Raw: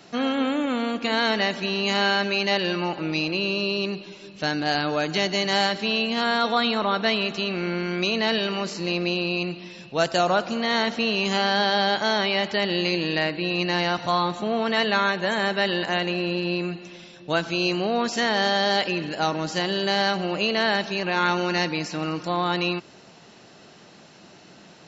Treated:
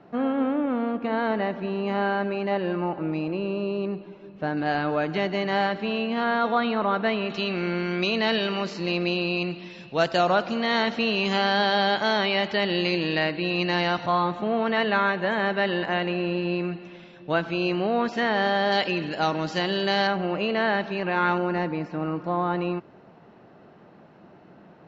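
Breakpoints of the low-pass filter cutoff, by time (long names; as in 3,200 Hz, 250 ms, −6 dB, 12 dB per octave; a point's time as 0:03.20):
1,200 Hz
from 0:04.57 1,900 Hz
from 0:07.30 4,000 Hz
from 0:14.06 2,400 Hz
from 0:18.72 4,100 Hz
from 0:20.07 2,100 Hz
from 0:21.38 1,300 Hz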